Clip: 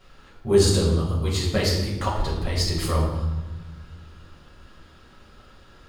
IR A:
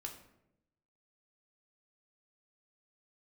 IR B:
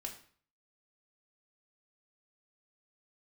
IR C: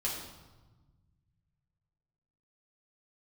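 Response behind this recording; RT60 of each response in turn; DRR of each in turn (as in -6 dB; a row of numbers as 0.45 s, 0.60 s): C; 0.85 s, 0.50 s, 1.2 s; 1.0 dB, 0.5 dB, -5.0 dB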